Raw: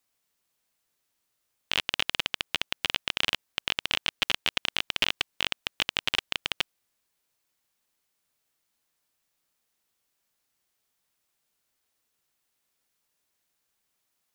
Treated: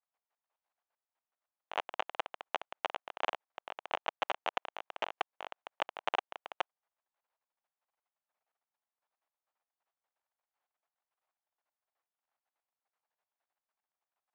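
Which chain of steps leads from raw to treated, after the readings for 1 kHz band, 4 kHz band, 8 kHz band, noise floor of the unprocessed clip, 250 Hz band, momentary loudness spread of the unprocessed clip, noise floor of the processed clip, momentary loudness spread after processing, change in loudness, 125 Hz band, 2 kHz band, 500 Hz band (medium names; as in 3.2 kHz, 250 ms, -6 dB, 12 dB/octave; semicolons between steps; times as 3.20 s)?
+3.0 dB, -17.5 dB, -21.5 dB, -78 dBFS, -11.5 dB, 4 LU, under -85 dBFS, 10 LU, -10.5 dB, under -20 dB, -11.0 dB, +1.5 dB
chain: tracing distortion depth 0.073 ms; level held to a coarse grid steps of 13 dB; ladder band-pass 910 Hz, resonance 40%; trim +10.5 dB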